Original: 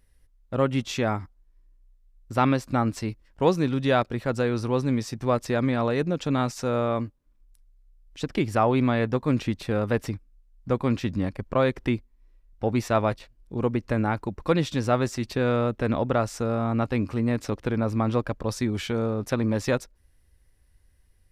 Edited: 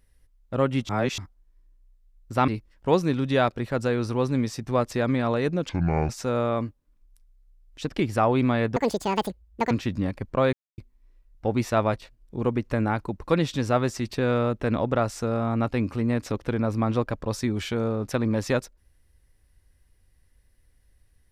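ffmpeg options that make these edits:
-filter_complex "[0:a]asplit=10[a][b][c][d][e][f][g][h][i][j];[a]atrim=end=0.892[k];[b]atrim=start=0.888:end=1.182,asetpts=PTS-STARTPTS,areverse[l];[c]atrim=start=1.178:end=2.482[m];[d]atrim=start=3.018:end=6.234[n];[e]atrim=start=6.23:end=6.48,asetpts=PTS-STARTPTS,asetrate=27342,aresample=44100,atrim=end_sample=17782,asetpts=PTS-STARTPTS[o];[f]atrim=start=6.476:end=9.154[p];[g]atrim=start=9.15:end=10.89,asetpts=PTS-STARTPTS,asetrate=81144,aresample=44100,atrim=end_sample=41703,asetpts=PTS-STARTPTS[q];[h]atrim=start=10.886:end=11.71,asetpts=PTS-STARTPTS,afade=t=out:st=0.82:d=0.004:c=hsin[r];[i]atrim=start=11.71:end=11.96,asetpts=PTS-STARTPTS,volume=0[s];[j]atrim=start=11.96,asetpts=PTS-STARTPTS,afade=t=in:d=0.004:c=hsin[t];[k][l]acrossfade=d=0.004:c1=hsin:c2=hsin[u];[u][m]acrossfade=d=0.004:c1=hsin:c2=hsin[v];[v][n]acrossfade=d=0.004:c1=hsin:c2=hsin[w];[w][o]acrossfade=d=0.004:c1=hsin:c2=hsin[x];[x][p]acrossfade=d=0.004:c1=hsin:c2=hsin[y];[y][q]acrossfade=d=0.004:c1=hsin:c2=hsin[z];[r][s][t]concat=n=3:v=0:a=1[aa];[z][aa]acrossfade=d=0.004:c1=hsin:c2=hsin"

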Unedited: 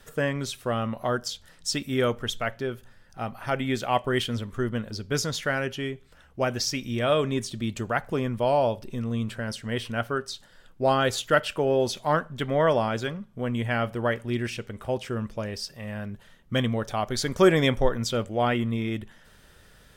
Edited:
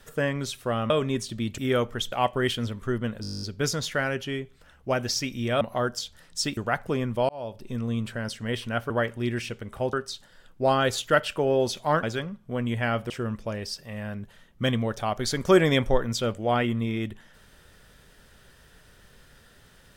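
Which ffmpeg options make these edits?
-filter_complex "[0:a]asplit=21[a][b][c][d][e][f][g][h][i][j][k][l][m][n][o][p][q][r][s][t][u];[a]atrim=end=0.902[v];[b]atrim=start=7.118:end=7.802[w];[c]atrim=start=1.858:end=2.402[x];[d]atrim=start=3.828:end=4.952[y];[e]atrim=start=4.928:end=4.952[z];[f]atrim=start=4.928:end=4.952[aa];[g]atrim=start=4.928:end=4.952[ab];[h]atrim=start=4.928:end=4.952[ac];[i]atrim=start=4.928:end=4.952[ad];[j]atrim=start=4.928:end=4.952[ae];[k]atrim=start=4.928:end=4.952[af];[l]atrim=start=4.928:end=4.952[ag];[m]atrim=start=4.928:end=4.952[ah];[n]atrim=start=4.928:end=7.122[ai];[o]atrim=start=0.898:end=1.862[aj];[p]atrim=start=7.798:end=8.52,asetpts=PTS-STARTPTS,afade=t=out:st=0.718:d=0.004:c=hsin[ak];[q]atrim=start=8.52:end=10.132,asetpts=PTS-STARTPTS,afade=t=in:d=0.47[al];[r]atrim=start=13.978:end=15.012[am];[s]atrim=start=10.128:end=12.232[an];[t]atrim=start=12.908:end=13.982[ao];[u]atrim=start=15.008[ap];[v][w]acrossfade=d=0.004:c1=hsin:c2=hsin[aq];[aq][x]acrossfade=d=0.004:c1=hsin:c2=hsin[ar];[ar][y]acrossfade=d=0.004:c1=hsin:c2=hsin[as];[as][z]acrossfade=d=0.004:c1=hsin:c2=hsin[at];[at][aa]acrossfade=d=0.004:c1=hsin:c2=hsin[au];[au][ab]acrossfade=d=0.004:c1=hsin:c2=hsin[av];[av][ac]acrossfade=d=0.004:c1=hsin:c2=hsin[aw];[aw][ad]acrossfade=d=0.004:c1=hsin:c2=hsin[ax];[ax][ae]acrossfade=d=0.004:c1=hsin:c2=hsin[ay];[ay][af]acrossfade=d=0.004:c1=hsin:c2=hsin[az];[az][ag]acrossfade=d=0.004:c1=hsin:c2=hsin[ba];[ba][ah]acrossfade=d=0.004:c1=hsin:c2=hsin[bb];[bb][ai]acrossfade=d=0.004:c1=hsin:c2=hsin[bc];[bc][aj]acrossfade=d=0.004:c1=hsin:c2=hsin[bd];[ak][al]concat=n=2:v=0:a=1[be];[bd][be]acrossfade=d=0.004:c1=hsin:c2=hsin[bf];[bf][am]acrossfade=d=0.004:c1=hsin:c2=hsin[bg];[bg][an]acrossfade=d=0.004:c1=hsin:c2=hsin[bh];[bh][ao]acrossfade=d=0.004:c1=hsin:c2=hsin[bi];[bi][ap]acrossfade=d=0.004:c1=hsin:c2=hsin"

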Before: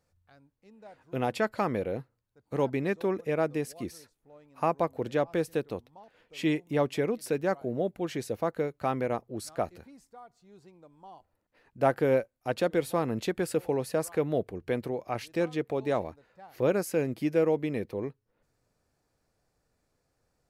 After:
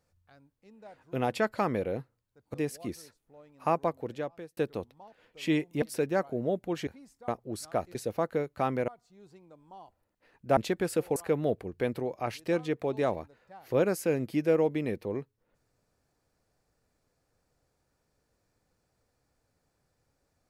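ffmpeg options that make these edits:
-filter_complex "[0:a]asplit=10[a][b][c][d][e][f][g][h][i][j];[a]atrim=end=2.542[k];[b]atrim=start=3.498:end=5.53,asetpts=PTS-STARTPTS,afade=t=out:st=1.192:d=0.84[l];[c]atrim=start=5.53:end=6.782,asetpts=PTS-STARTPTS,afade=t=in:d=0.004:c=hsin[m];[d]atrim=start=7.138:end=8.192[n];[e]atrim=start=9.788:end=10.202[o];[f]atrim=start=9.118:end=9.792[p];[g]atrim=start=8.188:end=9.122[q];[h]atrim=start=10.198:end=11.892[r];[i]atrim=start=13.148:end=13.742[s];[j]atrim=start=14.038[t];[l][m]concat=n=2:v=0:a=1[u];[k][u]acrossfade=d=0.004:c1=hsin:c2=hsin[v];[v][n]acrossfade=d=0.004:c1=hsin:c2=hsin[w];[w][o]acrossfade=d=0.004:c1=hsin:c2=hsin[x];[x][p]acrossfade=d=0.004:c1=hsin:c2=hsin[y];[y][q]acrossfade=d=0.004:c1=hsin:c2=hsin[z];[z][r]acrossfade=d=0.004:c1=hsin:c2=hsin[aa];[aa][s]acrossfade=d=0.004:c1=hsin:c2=hsin[ab];[ab][t]acrossfade=d=0.004:c1=hsin:c2=hsin"

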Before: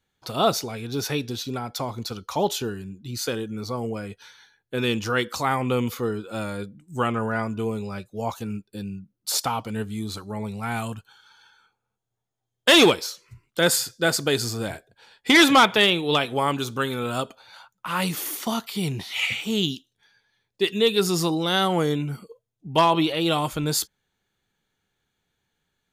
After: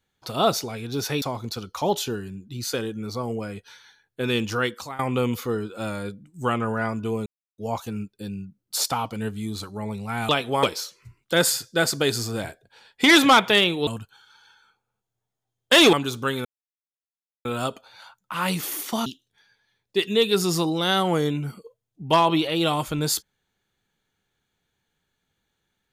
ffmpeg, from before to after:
-filter_complex "[0:a]asplit=11[a][b][c][d][e][f][g][h][i][j][k];[a]atrim=end=1.222[l];[b]atrim=start=1.758:end=5.53,asetpts=PTS-STARTPTS,afade=t=out:st=3.362:d=0.41:silence=0.105925[m];[c]atrim=start=5.53:end=7.8,asetpts=PTS-STARTPTS,afade=t=in:d=0.004:c=hsin:silence=0.105925,afade=t=out:st=2.266:d=0.004:c=hsin[n];[d]atrim=start=7.8:end=8.12,asetpts=PTS-STARTPTS,volume=0[o];[e]atrim=start=8.12:end=10.832,asetpts=PTS-STARTPTS,afade=t=in:d=0.004:c=hsin[p];[f]atrim=start=16.128:end=16.472[q];[g]atrim=start=12.888:end=16.132[r];[h]atrim=start=10.828:end=12.892[s];[i]atrim=start=16.468:end=16.99,asetpts=PTS-STARTPTS,afade=t=out:st=0.518:d=0.004:c=hsin,apad=pad_dur=1[t];[j]atrim=start=16.99:end=18.602,asetpts=PTS-STARTPTS,afade=t=in:d=0.004:c=hsin[u];[k]atrim=start=19.708[v];[m][n][o][p]concat=n=4:v=0:a=1[w];[l][w]acrossfade=d=0.004:c1=hsin:c2=hsin[x];[x][q]acrossfade=d=0.004:c1=hsin:c2=hsin[y];[y][r]acrossfade=d=0.004:c1=hsin:c2=hsin[z];[z][s]acrossfade=d=0.004:c1=hsin:c2=hsin[aa];[t][u]concat=n=2:v=0:a=1[ab];[aa][ab]acrossfade=d=0.004:c1=hsin:c2=hsin[ac];[ac][v]acrossfade=d=0.004:c1=hsin:c2=hsin"

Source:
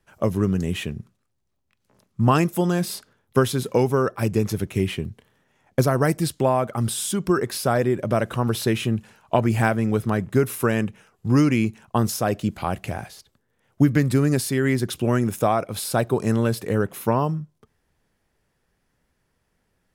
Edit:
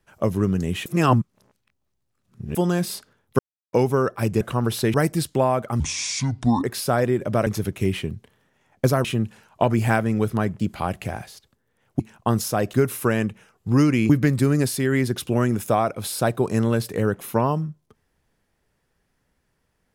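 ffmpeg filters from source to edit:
-filter_complex "[0:a]asplit=15[a][b][c][d][e][f][g][h][i][j][k][l][m][n][o];[a]atrim=end=0.862[p];[b]atrim=start=0.858:end=2.552,asetpts=PTS-STARTPTS,areverse[q];[c]atrim=start=2.548:end=3.39,asetpts=PTS-STARTPTS,afade=t=out:st=0.838:d=0.004:c=hsin[r];[d]atrim=start=3.39:end=3.73,asetpts=PTS-STARTPTS,volume=0[s];[e]atrim=start=3.73:end=4.412,asetpts=PTS-STARTPTS,afade=t=in:d=0.004:c=hsin[t];[f]atrim=start=8.238:end=8.772[u];[g]atrim=start=5.988:end=6.854[v];[h]atrim=start=6.85:end=7.41,asetpts=PTS-STARTPTS,asetrate=29547,aresample=44100[w];[i]atrim=start=7.406:end=8.242[x];[j]atrim=start=4.408:end=5.992[y];[k]atrim=start=8.768:end=10.322[z];[l]atrim=start=12.418:end=13.822[aa];[m]atrim=start=11.678:end=12.422[ab];[n]atrim=start=10.318:end=11.682[ac];[o]atrim=start=13.818[ad];[p][q]acrossfade=d=0.004:c1=hsin:c2=hsin[ae];[r][s][t]concat=n=3:v=0:a=1[af];[ae][af]acrossfade=d=0.004:c1=hsin:c2=hsin[ag];[ag][u]acrossfade=d=0.004:c1=hsin:c2=hsin[ah];[ah][v]acrossfade=d=0.004:c1=hsin:c2=hsin[ai];[ai][w]acrossfade=d=0.004:c1=hsin:c2=hsin[aj];[aj][x]acrossfade=d=0.004:c1=hsin:c2=hsin[ak];[ak][y]acrossfade=d=0.004:c1=hsin:c2=hsin[al];[al][z]acrossfade=d=0.004:c1=hsin:c2=hsin[am];[am][aa]acrossfade=d=0.004:c1=hsin:c2=hsin[an];[an][ab]acrossfade=d=0.004:c1=hsin:c2=hsin[ao];[ao][ac]acrossfade=d=0.004:c1=hsin:c2=hsin[ap];[ap][ad]acrossfade=d=0.004:c1=hsin:c2=hsin"

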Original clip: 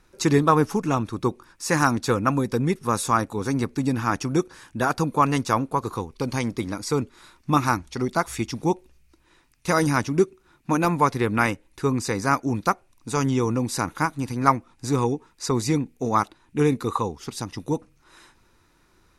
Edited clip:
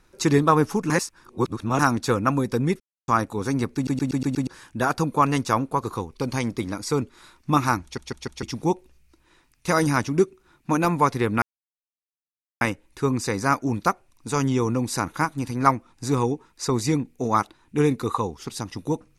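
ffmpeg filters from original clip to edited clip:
-filter_complex "[0:a]asplit=16[a][b][c][d][e][f][g][h][i][j][k][l][m][n][o][p];[a]atrim=end=0.902[q];[b]atrim=start=0.898:end=1.792,asetpts=PTS-STARTPTS,areverse[r];[c]atrim=start=1.788:end=2.8,asetpts=PTS-STARTPTS,afade=t=out:st=1.008:d=0.004:c=hsin[s];[d]atrim=start=2.8:end=3.08,asetpts=PTS-STARTPTS,volume=0[t];[e]atrim=start=3.08:end=3.872,asetpts=PTS-STARTPTS,afade=t=in:d=0.004:c=hsin[u];[f]atrim=start=3.748:end=3.872[v];[g]atrim=start=3.748:end=3.872[w];[h]atrim=start=3.748:end=3.872[x];[i]atrim=start=3.748:end=3.872[y];[j]atrim=start=3.748:end=3.872[z];[k]atrim=start=4.468:end=7.982[aa];[l]atrim=start=7.828:end=7.982[ab];[m]atrim=start=7.828:end=7.982[ac];[n]atrim=start=7.828:end=7.982[ad];[o]atrim=start=8.428:end=11.42,asetpts=PTS-STARTPTS,afade=t=out:st=2.988:d=0.004:c=hsin,apad=pad_dur=1.19[ae];[p]atrim=start=11.42,asetpts=PTS-STARTPTS,afade=t=in:d=0.004:c=hsin[af];[q][r]acrossfade=d=0.004:c1=hsin:c2=hsin[ag];[s][t][u]concat=n=3:v=0:a=1[ah];[ag][ah]acrossfade=d=0.004:c1=hsin:c2=hsin[ai];[ai][v]acrossfade=d=0.004:c1=hsin:c2=hsin[aj];[aj][w]acrossfade=d=0.004:c1=hsin:c2=hsin[ak];[ak][x]acrossfade=d=0.004:c1=hsin:c2=hsin[al];[al][y]acrossfade=d=0.004:c1=hsin:c2=hsin[am];[am][z]acrossfade=d=0.004:c1=hsin:c2=hsin[an];[an][aa]acrossfade=d=0.004:c1=hsin:c2=hsin[ao];[ao][ab]acrossfade=d=0.004:c1=hsin:c2=hsin[ap];[ap][ac]acrossfade=d=0.004:c1=hsin:c2=hsin[aq];[aq][ad]acrossfade=d=0.004:c1=hsin:c2=hsin[ar];[ae][af]concat=n=2:v=0:a=1[as];[ar][as]acrossfade=d=0.004:c1=hsin:c2=hsin"

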